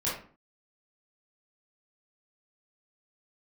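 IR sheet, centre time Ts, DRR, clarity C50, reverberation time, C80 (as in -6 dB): 42 ms, -8.5 dB, 3.5 dB, 0.45 s, 9.0 dB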